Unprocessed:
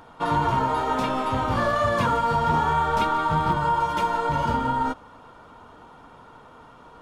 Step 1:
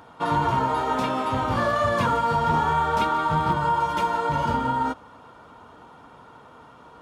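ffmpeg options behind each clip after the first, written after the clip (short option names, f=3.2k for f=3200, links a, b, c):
-af "highpass=61"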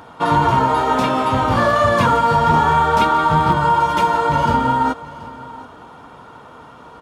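-af "aecho=1:1:730:0.119,volume=7.5dB"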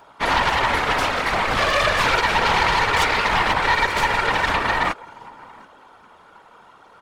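-af "aeval=exprs='0.891*(cos(1*acos(clip(val(0)/0.891,-1,1)))-cos(1*PI/2))+0.316*(cos(8*acos(clip(val(0)/0.891,-1,1)))-cos(8*PI/2))':c=same,lowshelf=f=370:g=-11.5,afftfilt=real='hypot(re,im)*cos(2*PI*random(0))':imag='hypot(re,im)*sin(2*PI*random(1))':win_size=512:overlap=0.75"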